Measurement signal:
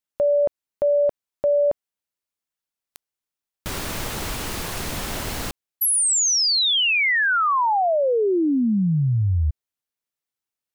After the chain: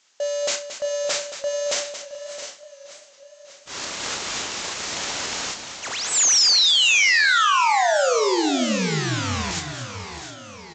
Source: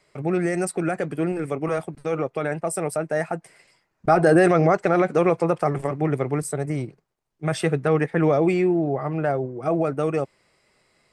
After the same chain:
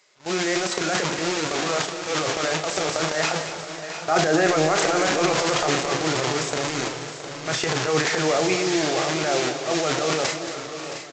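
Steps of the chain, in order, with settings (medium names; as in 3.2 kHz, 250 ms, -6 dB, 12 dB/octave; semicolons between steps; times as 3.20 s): one-bit delta coder 64 kbps, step -24 dBFS; gate -26 dBFS, range -38 dB; high-pass 610 Hz 6 dB/octave; treble shelf 5.7 kHz +8 dB; transient shaper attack -9 dB, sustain +11 dB; compression 2:1, threshold -29 dBFS; doubling 32 ms -9 dB; multi-tap echo 70/226/669/710/749 ms -16/-11/-12.5/-14/-19.5 dB; resampled via 16 kHz; modulated delay 595 ms, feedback 71%, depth 94 cents, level -18.5 dB; trim +6.5 dB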